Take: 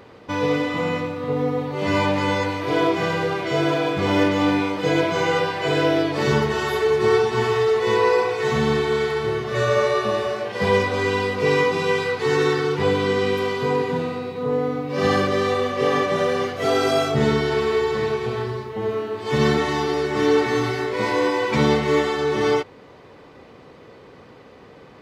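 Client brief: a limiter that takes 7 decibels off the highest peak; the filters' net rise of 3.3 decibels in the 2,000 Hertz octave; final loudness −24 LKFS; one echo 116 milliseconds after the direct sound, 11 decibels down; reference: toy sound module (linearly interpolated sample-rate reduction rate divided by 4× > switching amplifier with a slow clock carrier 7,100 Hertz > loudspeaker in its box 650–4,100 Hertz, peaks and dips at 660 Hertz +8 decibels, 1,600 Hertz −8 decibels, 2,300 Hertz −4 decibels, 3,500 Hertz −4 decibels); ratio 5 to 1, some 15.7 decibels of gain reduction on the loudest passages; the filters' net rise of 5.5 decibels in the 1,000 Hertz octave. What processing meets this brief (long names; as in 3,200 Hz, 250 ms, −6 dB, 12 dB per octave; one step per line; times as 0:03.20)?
parametric band 1,000 Hz +5 dB
parametric band 2,000 Hz +8 dB
downward compressor 5 to 1, threshold −30 dBFS
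brickwall limiter −24.5 dBFS
single-tap delay 116 ms −11 dB
linearly interpolated sample-rate reduction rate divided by 4×
switching amplifier with a slow clock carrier 7,100 Hz
loudspeaker in its box 650–4,100 Hz, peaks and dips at 660 Hz +8 dB, 1,600 Hz −8 dB, 2,300 Hz −4 dB, 3,500 Hz −4 dB
level +12.5 dB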